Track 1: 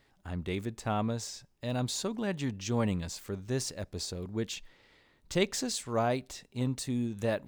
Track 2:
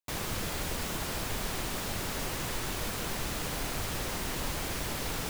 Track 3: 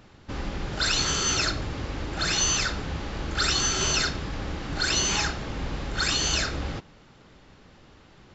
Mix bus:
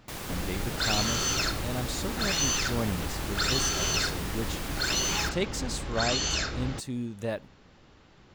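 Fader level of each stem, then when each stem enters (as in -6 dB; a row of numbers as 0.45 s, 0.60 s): -1.5 dB, -3.0 dB, -3.5 dB; 0.00 s, 0.00 s, 0.00 s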